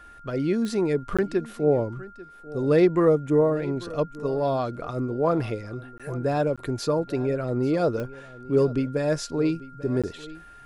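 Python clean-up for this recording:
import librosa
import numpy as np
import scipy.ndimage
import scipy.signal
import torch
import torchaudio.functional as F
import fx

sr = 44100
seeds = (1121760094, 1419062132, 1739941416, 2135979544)

y = fx.fix_declick_ar(x, sr, threshold=10.0)
y = fx.notch(y, sr, hz=1400.0, q=30.0)
y = fx.fix_interpolate(y, sr, at_s=(1.17, 5.98, 6.56, 10.02), length_ms=16.0)
y = fx.fix_echo_inverse(y, sr, delay_ms=842, level_db=-18.5)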